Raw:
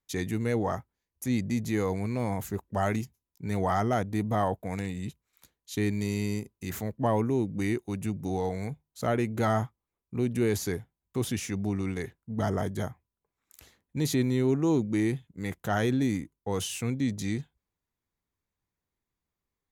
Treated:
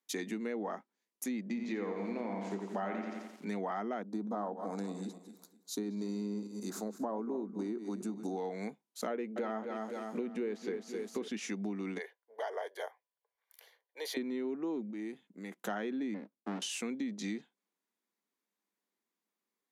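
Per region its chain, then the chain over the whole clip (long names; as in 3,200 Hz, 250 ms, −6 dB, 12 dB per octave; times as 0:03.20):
0:01.46–0:03.49: low-pass filter 5,900 Hz + double-tracking delay 26 ms −10.5 dB + feedback echo at a low word length 87 ms, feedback 55%, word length 9 bits, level −5 dB
0:04.02–0:08.37: feedback delay that plays each chunk backwards 129 ms, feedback 47%, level −11 dB + flat-topped bell 2,400 Hz −15 dB 1.1 octaves
0:09.10–0:11.28: parametric band 480 Hz +9 dB 0.25 octaves + feedback echo at a low word length 260 ms, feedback 55%, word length 9 bits, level −10 dB
0:11.98–0:14.17: elliptic high-pass filter 470 Hz, stop band 60 dB + parametric band 7,400 Hz −14.5 dB 0.56 octaves + notch comb filter 1,300 Hz
0:14.90–0:15.59: high-shelf EQ 5,300 Hz −6.5 dB + downward compressor 2.5 to 1, threshold −41 dBFS
0:16.14–0:16.62: band-pass filter 100–2,500 Hz + windowed peak hold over 65 samples
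whole clip: treble cut that deepens with the level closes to 2,900 Hz, closed at −23 dBFS; Chebyshev high-pass filter 200 Hz, order 5; downward compressor, threshold −34 dBFS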